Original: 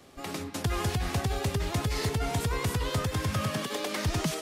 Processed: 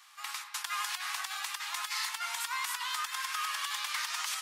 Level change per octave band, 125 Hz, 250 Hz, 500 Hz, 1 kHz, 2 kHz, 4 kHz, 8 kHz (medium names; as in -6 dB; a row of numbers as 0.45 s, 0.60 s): under -40 dB, under -40 dB, -29.5 dB, -1.0 dB, +1.5 dB, +1.5 dB, +1.5 dB